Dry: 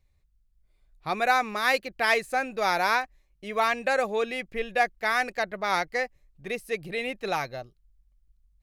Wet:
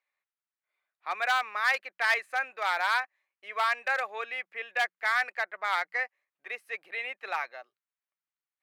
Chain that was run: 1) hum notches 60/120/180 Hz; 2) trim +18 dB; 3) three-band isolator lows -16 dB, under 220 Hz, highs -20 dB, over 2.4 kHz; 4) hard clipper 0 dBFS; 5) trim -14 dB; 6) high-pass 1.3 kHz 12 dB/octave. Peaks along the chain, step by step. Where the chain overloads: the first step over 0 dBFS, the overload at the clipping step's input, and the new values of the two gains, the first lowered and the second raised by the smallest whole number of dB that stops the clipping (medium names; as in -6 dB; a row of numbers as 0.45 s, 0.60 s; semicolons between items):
-9.0 dBFS, +9.0 dBFS, +8.5 dBFS, 0.0 dBFS, -14.0 dBFS, -13.0 dBFS; step 2, 8.5 dB; step 2 +9 dB, step 5 -5 dB